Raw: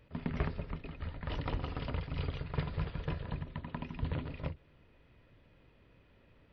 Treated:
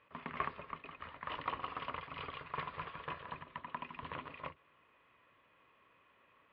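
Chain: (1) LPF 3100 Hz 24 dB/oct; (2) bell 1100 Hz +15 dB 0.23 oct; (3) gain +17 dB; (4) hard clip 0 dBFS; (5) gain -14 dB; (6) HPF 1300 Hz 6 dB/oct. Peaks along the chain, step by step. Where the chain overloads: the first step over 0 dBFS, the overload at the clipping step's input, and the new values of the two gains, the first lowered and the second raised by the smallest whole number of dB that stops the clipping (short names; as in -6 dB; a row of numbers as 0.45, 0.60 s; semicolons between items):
-22.0, -18.5, -1.5, -1.5, -15.5, -21.0 dBFS; no overload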